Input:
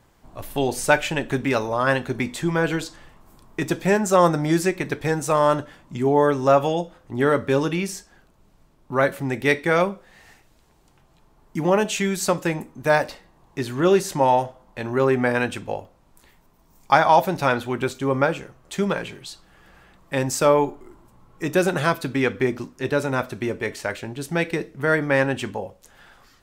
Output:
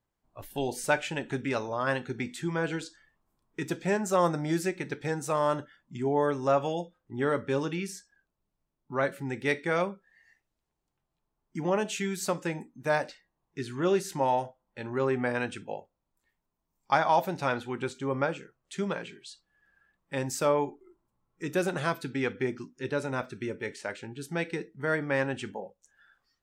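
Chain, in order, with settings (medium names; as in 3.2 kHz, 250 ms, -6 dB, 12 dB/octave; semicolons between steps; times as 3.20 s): spectral noise reduction 17 dB; trim -8.5 dB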